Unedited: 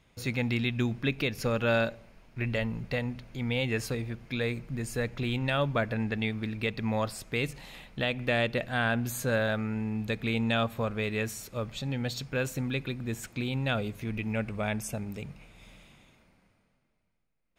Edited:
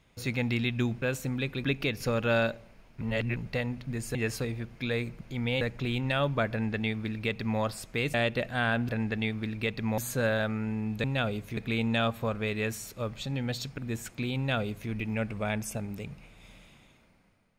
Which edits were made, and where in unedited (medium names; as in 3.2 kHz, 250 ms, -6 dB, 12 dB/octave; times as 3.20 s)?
2.39–2.74 s: reverse
3.25–3.65 s: swap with 4.71–4.99 s
5.89–6.98 s: copy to 9.07 s
7.52–8.32 s: delete
12.34–12.96 s: move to 1.02 s
13.55–14.08 s: copy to 10.13 s